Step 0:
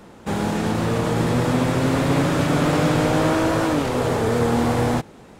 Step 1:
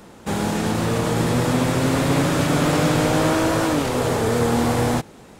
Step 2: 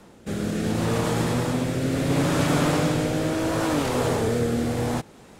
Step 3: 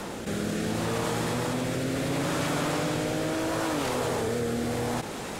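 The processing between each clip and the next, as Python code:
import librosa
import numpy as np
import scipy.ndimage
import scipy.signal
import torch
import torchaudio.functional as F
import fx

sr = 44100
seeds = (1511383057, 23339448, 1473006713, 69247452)

y1 = fx.high_shelf(x, sr, hz=4500.0, db=6.5)
y2 = fx.rotary(y1, sr, hz=0.7)
y2 = y2 * 10.0 ** (-2.0 / 20.0)
y3 = fx.low_shelf(y2, sr, hz=320.0, db=-6.5)
y3 = fx.env_flatten(y3, sr, amount_pct=70)
y3 = y3 * 10.0 ** (-4.5 / 20.0)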